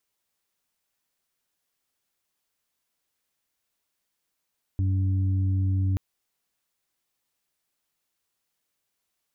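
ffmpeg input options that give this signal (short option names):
-f lavfi -i "aevalsrc='0.0891*sin(2*PI*95*t)+0.0112*sin(2*PI*190*t)+0.0178*sin(2*PI*285*t)':d=1.18:s=44100"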